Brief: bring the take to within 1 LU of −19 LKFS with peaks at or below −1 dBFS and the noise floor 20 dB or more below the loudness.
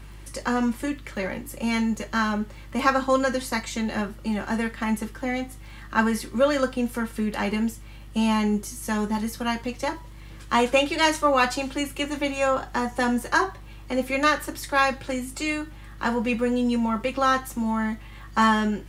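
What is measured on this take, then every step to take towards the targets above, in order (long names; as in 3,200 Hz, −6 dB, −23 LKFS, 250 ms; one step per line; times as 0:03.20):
crackle rate 24 per second; mains hum 50 Hz; hum harmonics up to 150 Hz; level of the hum −40 dBFS; integrated loudness −25.0 LKFS; sample peak −4.5 dBFS; target loudness −19.0 LKFS
→ click removal
hum removal 50 Hz, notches 3
level +6 dB
brickwall limiter −1 dBFS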